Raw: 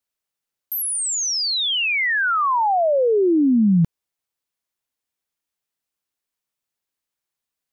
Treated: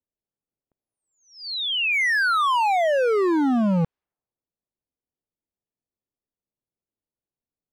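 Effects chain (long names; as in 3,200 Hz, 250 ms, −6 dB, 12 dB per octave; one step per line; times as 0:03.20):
Bessel low-pass filter 2,100 Hz, order 2
gain into a clipping stage and back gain 22 dB
low-pass that shuts in the quiet parts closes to 490 Hz, open at −28 dBFS
level +3 dB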